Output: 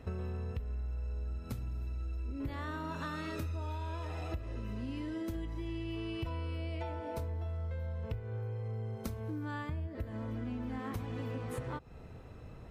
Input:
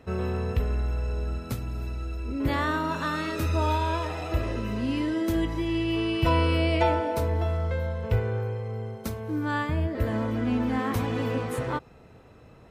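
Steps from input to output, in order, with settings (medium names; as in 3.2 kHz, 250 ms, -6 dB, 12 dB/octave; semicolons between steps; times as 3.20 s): bass shelf 110 Hz +11.5 dB; compression 10:1, threshold -33 dBFS, peak gain reduction 21 dB; trim -2.5 dB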